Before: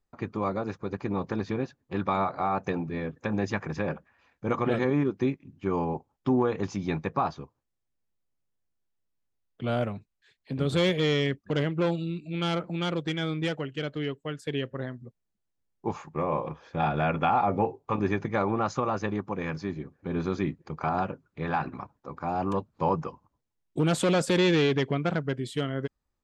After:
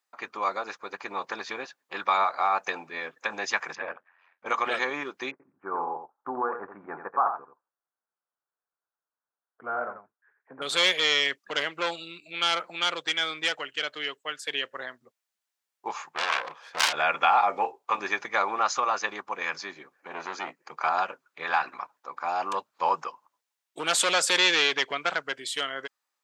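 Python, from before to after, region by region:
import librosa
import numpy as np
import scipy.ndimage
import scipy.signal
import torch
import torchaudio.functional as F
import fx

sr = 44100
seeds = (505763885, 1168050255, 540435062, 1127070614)

y = fx.chain(x, sr, fx.lowpass(hz=2300.0, slope=12),
    fx.ring_mod(carrier_hz=44.0), at=(3.75, 4.46))
y = fx.chain(y, sr, fx.ellip_lowpass(hz=1500.0, order=4, stop_db=70),
    fx.notch(hz=590.0, q=18.0),
    fx.echo_single(ms=87, db=-8.0), at=(5.31, 10.62))
y = fx.chain(y, sr, fx.self_delay(depth_ms=0.79),
    fx.dynamic_eq(hz=1700.0, q=1.0, threshold_db=-40.0, ratio=4.0, max_db=-5), at=(16.13, 16.93))
y = fx.chain(y, sr, fx.highpass(hz=150.0, slope=24),
    fx.peak_eq(hz=3600.0, db=-9.0, octaves=0.33),
    fx.transformer_sat(knee_hz=790.0), at=(20.0, 20.71))
y = scipy.signal.sosfilt(scipy.signal.butter(2, 1000.0, 'highpass', fs=sr, output='sos'), y)
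y = fx.dynamic_eq(y, sr, hz=6100.0, q=0.72, threshold_db=-51.0, ratio=4.0, max_db=4)
y = y * librosa.db_to_amplitude(7.5)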